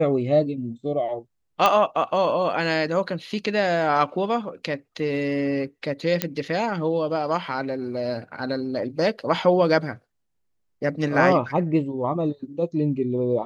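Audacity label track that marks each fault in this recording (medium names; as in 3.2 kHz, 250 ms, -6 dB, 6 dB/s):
1.660000	1.660000	pop -5 dBFS
6.220000	6.220000	pop -5 dBFS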